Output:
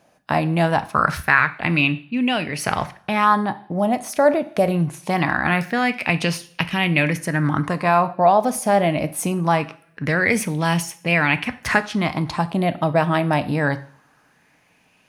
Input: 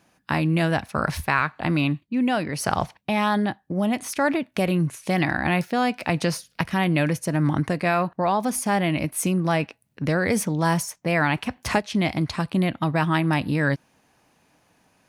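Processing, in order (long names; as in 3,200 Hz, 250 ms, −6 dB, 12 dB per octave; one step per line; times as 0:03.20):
coupled-rooms reverb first 0.46 s, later 1.5 s, from −24 dB, DRR 11 dB
0:03.24–0:04.74: dynamic equaliser 2,900 Hz, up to −5 dB, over −40 dBFS, Q 1.4
auto-filter bell 0.23 Hz 600–2,800 Hz +11 dB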